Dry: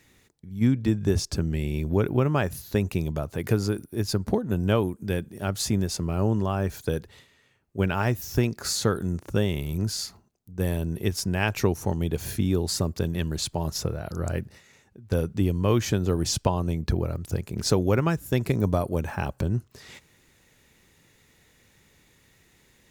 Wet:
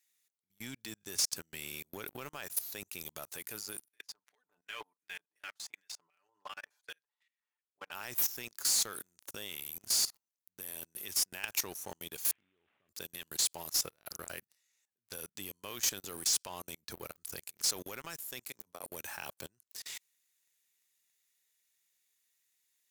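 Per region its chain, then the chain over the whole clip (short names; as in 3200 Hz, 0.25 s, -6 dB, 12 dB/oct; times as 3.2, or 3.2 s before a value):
3.88–7.92 low shelf 240 Hz +3 dB + comb 6.8 ms, depth 91% + LFO band-pass square 2.7 Hz 930–2000 Hz
12.31–12.89 CVSD 16 kbps + compressor 2.5:1, threshold -30 dBFS
18.44–18.84 compressor 2:1, threshold -35 dBFS + three-band expander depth 40%
whole clip: differentiator; level quantiser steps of 18 dB; sample leveller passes 3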